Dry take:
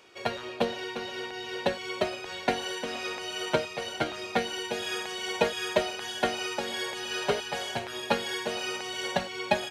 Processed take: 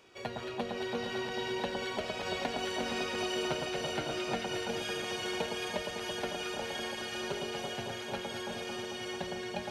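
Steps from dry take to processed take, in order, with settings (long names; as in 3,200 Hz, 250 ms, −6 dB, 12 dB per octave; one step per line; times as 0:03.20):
source passing by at 0:02.91, 5 m/s, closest 5.3 metres
downward compressor 6 to 1, threshold −40 dBFS, peak gain reduction 17.5 dB
low-shelf EQ 270 Hz +8.5 dB
on a send: delay that swaps between a low-pass and a high-pass 111 ms, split 1,400 Hz, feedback 89%, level −3.5 dB
on the sum: level +4 dB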